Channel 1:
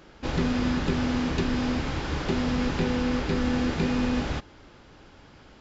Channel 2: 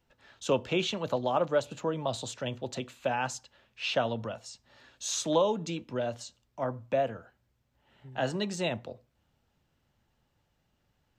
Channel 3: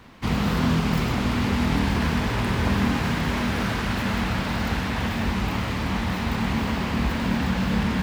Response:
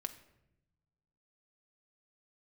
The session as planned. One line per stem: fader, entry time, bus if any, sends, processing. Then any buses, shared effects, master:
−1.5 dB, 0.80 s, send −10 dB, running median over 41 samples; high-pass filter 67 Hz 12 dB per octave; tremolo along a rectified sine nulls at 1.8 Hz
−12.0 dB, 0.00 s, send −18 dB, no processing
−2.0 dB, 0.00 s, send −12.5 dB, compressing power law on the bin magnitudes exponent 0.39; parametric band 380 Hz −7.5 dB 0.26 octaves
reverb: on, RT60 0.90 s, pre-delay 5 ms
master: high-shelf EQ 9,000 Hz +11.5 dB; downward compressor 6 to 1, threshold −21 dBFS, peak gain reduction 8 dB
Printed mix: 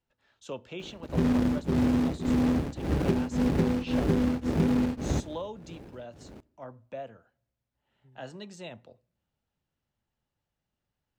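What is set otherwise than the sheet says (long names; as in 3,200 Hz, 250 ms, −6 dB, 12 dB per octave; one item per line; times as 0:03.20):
stem 1 −1.5 dB → +6.5 dB
stem 3: muted
master: missing high-shelf EQ 9,000 Hz +11.5 dB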